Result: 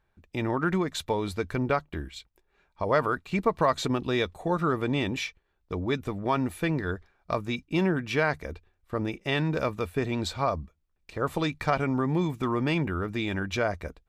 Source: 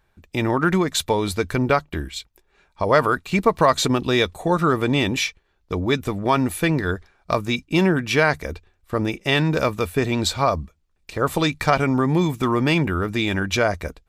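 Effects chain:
high-shelf EQ 4,500 Hz −8.5 dB
level −7 dB

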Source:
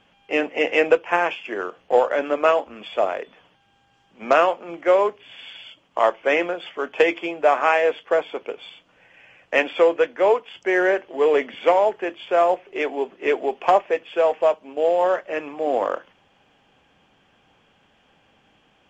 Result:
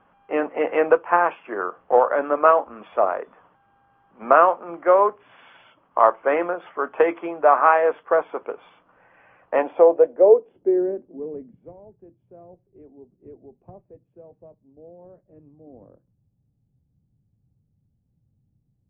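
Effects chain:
low-pass filter sweep 1,200 Hz → 120 Hz, 0:09.39–0:11.73
level −1.5 dB

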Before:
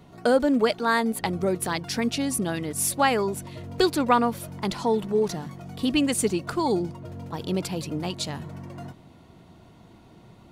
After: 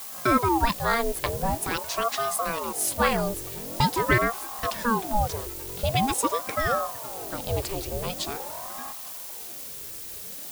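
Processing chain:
background noise blue −37 dBFS
ring modulator whose carrier an LFO sweeps 580 Hz, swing 65%, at 0.45 Hz
level +1.5 dB

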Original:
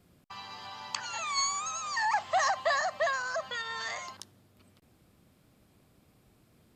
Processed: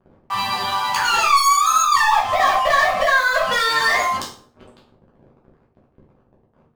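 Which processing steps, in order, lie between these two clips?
gate on every frequency bin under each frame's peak −15 dB strong
low-pass filter 3,200 Hz 6 dB per octave
downward compressor 6 to 1, threshold −34 dBFS, peak gain reduction 10 dB
leveller curve on the samples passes 5
convolution reverb RT60 0.40 s, pre-delay 5 ms, DRR −5 dB
level +2 dB

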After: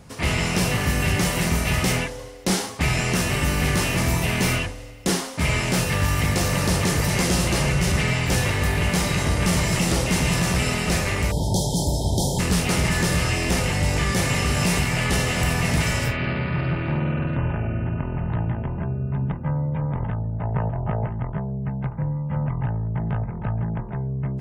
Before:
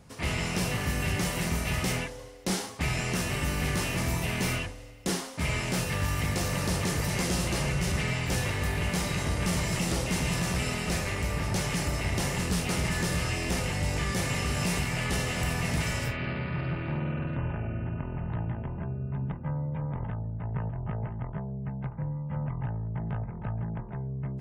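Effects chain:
0:11.31–0:12.39: time-frequency box erased 990–3,100 Hz
0:20.31–0:21.06: dynamic equaliser 680 Hz, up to +6 dB, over −54 dBFS, Q 1.2
level +7.5 dB

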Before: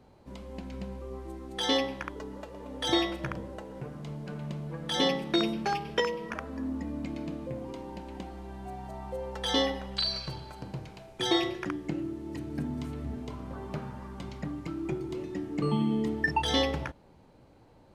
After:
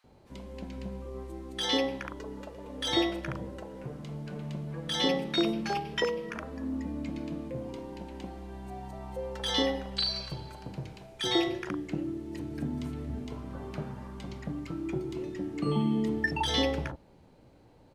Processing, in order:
multiband delay without the direct sound highs, lows 40 ms, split 1,100 Hz

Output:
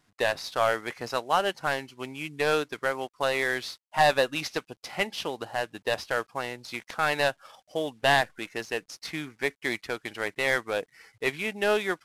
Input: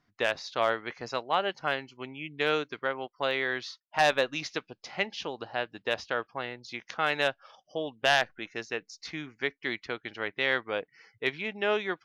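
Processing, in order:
variable-slope delta modulation 64 kbit/s
level +3.5 dB

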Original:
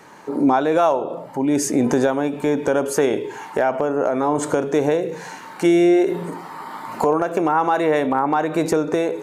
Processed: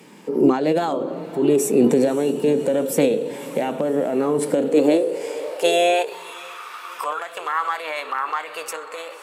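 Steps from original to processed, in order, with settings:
flat-topped bell 970 Hz −9.5 dB
formants moved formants +3 semitones
feedback delay with all-pass diffusion 574 ms, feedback 55%, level −15 dB
high-pass filter sweep 190 Hz → 1,200 Hz, 0:04.44–0:06.39

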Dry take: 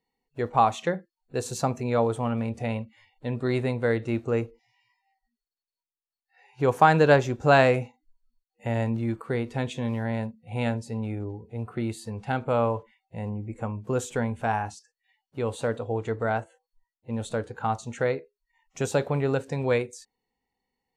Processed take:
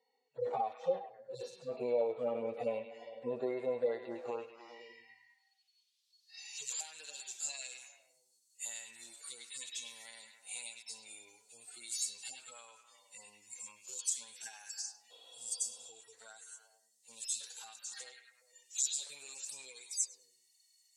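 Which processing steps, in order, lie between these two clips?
harmonic-percussive split with one part muted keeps harmonic
RIAA equalisation recording
healed spectral selection 0:15.13–0:15.82, 250–4,500 Hz after
parametric band 5,300 Hz +12.5 dB 2.4 octaves
downward compressor 10 to 1, threshold −38 dBFS, peak gain reduction 24 dB
band-pass filter sweep 540 Hz → 7,800 Hz, 0:03.75–0:06.86
echo through a band-pass that steps 102 ms, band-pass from 3,000 Hz, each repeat −0.7 octaves, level −4 dB
level +11.5 dB

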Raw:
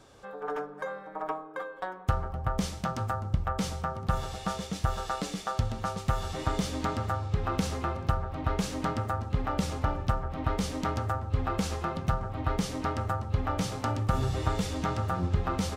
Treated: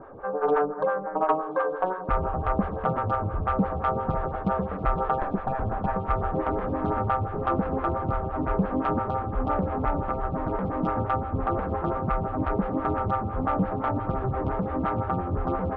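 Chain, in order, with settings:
0:05.18–0:05.96: lower of the sound and its delayed copy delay 1.2 ms
low-pass filter 1,500 Hz 24 dB per octave
in parallel at +3 dB: brickwall limiter −23.5 dBFS, peak gain reduction 11 dB
on the sum: soft clipping −17.5 dBFS, distortion −16 dB
speech leveller within 4 dB 2 s
on a send: feedback delay with all-pass diffusion 1,111 ms, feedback 78%, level −12 dB
on the sum: phaser with staggered stages 5.8 Hz
level +3.5 dB

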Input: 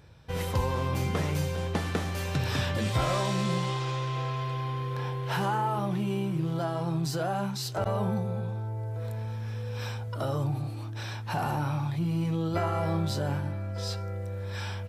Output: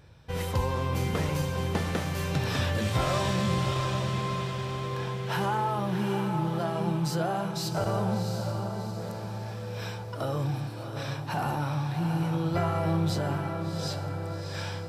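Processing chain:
pitch vibrato 1.7 Hz 7.2 cents
feedback delay with all-pass diffusion 708 ms, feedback 48%, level −6 dB

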